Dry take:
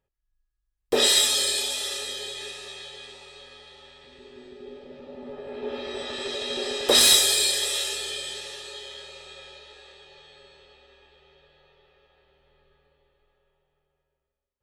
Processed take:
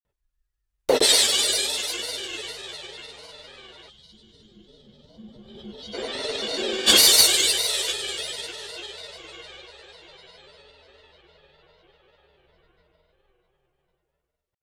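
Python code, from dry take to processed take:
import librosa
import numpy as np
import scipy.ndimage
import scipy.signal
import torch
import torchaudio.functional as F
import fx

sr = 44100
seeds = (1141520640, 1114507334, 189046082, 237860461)

y = fx.granulator(x, sr, seeds[0], grain_ms=100.0, per_s=20.0, spray_ms=100.0, spread_st=3)
y = fx.spec_box(y, sr, start_s=3.9, length_s=2.04, low_hz=230.0, high_hz=2900.0, gain_db=-16)
y = y * librosa.db_to_amplitude(3.5)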